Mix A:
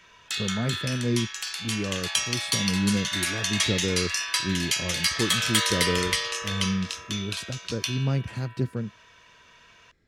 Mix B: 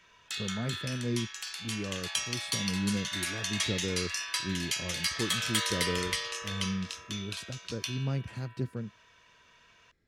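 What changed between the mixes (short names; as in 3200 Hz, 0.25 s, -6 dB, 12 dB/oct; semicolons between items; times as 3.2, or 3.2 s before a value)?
speech -6.5 dB; background -6.5 dB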